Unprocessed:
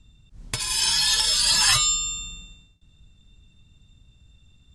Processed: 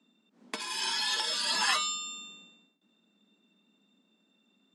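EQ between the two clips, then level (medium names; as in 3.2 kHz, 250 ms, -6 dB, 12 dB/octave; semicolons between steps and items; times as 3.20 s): steep high-pass 200 Hz 72 dB/octave; low-pass 1.4 kHz 6 dB/octave; 0.0 dB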